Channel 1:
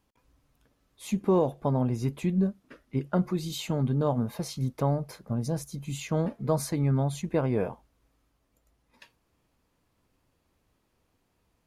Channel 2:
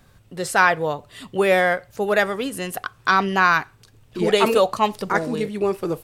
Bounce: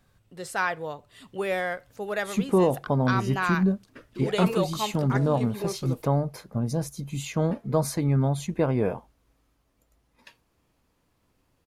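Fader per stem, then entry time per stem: +2.5, -10.5 dB; 1.25, 0.00 s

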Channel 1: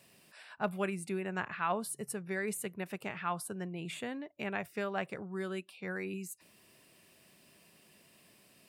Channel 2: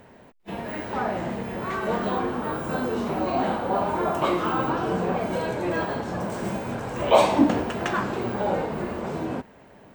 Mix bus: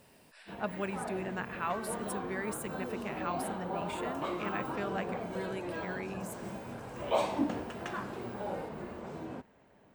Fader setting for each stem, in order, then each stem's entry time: -2.0, -12.5 dB; 0.00, 0.00 s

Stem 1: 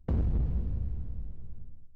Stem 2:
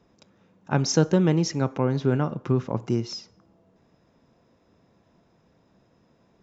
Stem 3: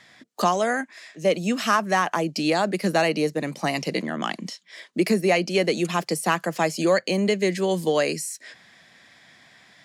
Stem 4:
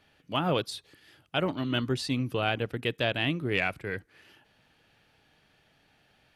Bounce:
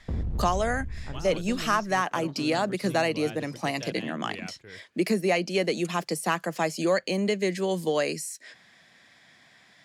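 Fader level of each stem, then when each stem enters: -2.0, -19.5, -4.0, -13.0 dB; 0.00, 0.35, 0.00, 0.80 s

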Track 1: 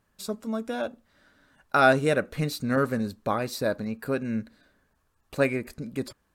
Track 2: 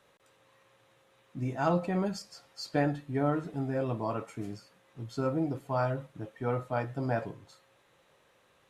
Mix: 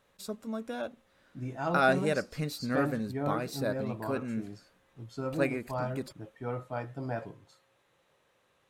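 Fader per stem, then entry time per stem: -6.0, -4.5 dB; 0.00, 0.00 s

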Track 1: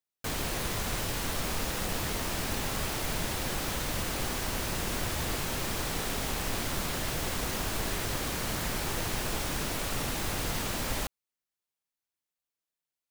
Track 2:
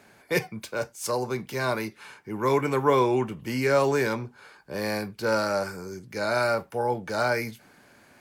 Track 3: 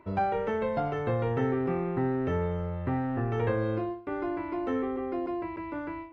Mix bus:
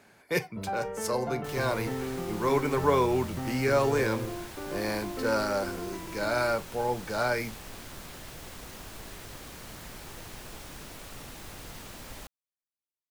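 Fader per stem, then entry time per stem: -11.5, -3.0, -6.0 dB; 1.20, 0.00, 0.50 s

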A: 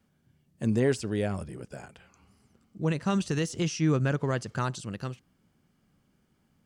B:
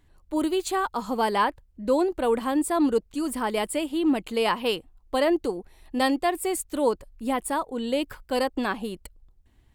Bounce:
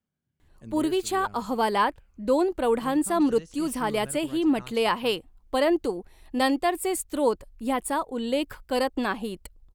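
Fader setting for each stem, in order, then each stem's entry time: -16.0, 0.0 dB; 0.00, 0.40 s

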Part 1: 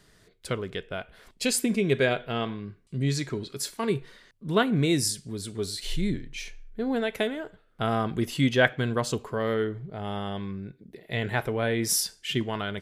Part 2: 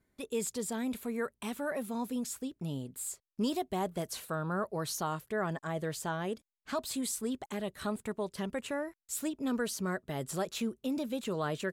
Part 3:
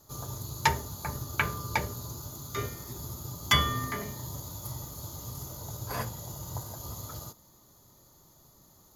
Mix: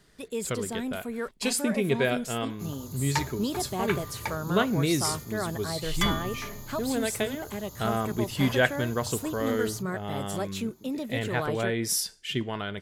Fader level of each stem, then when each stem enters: -2.0, +1.5, -4.5 dB; 0.00, 0.00, 2.50 s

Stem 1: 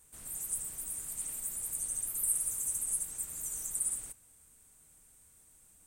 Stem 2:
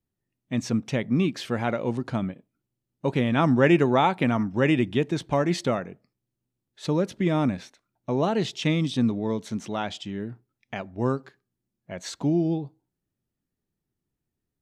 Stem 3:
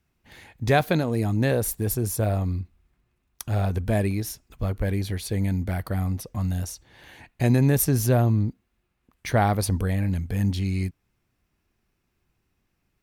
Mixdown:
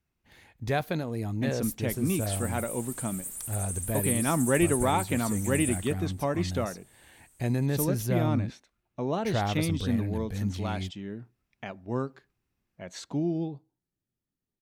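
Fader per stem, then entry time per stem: -0.5, -5.5, -8.0 dB; 1.80, 0.90, 0.00 s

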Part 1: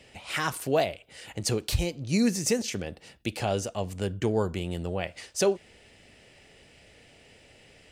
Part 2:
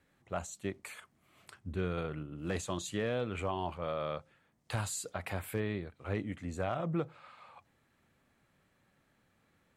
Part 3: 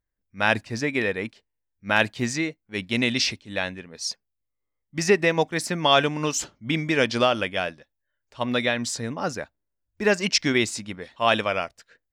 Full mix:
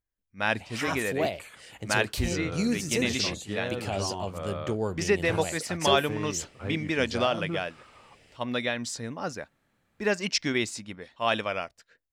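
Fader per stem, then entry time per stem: -3.5, 0.0, -5.5 dB; 0.45, 0.55, 0.00 s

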